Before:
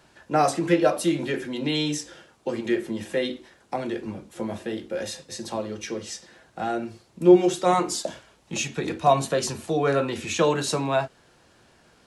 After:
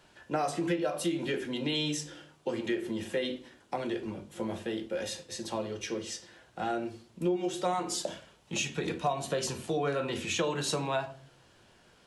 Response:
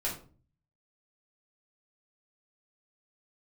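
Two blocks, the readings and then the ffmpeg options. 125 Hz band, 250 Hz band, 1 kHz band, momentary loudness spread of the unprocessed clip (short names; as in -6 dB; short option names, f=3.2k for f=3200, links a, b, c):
-7.0 dB, -8.5 dB, -9.0 dB, 13 LU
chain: -filter_complex "[0:a]equalizer=f=3.1k:t=o:w=0.41:g=4.5,asplit=2[a][b];[1:a]atrim=start_sample=2205[c];[b][c]afir=irnorm=-1:irlink=0,volume=-12dB[d];[a][d]amix=inputs=2:normalize=0,acompressor=threshold=-21dB:ratio=6,volume=-5.5dB"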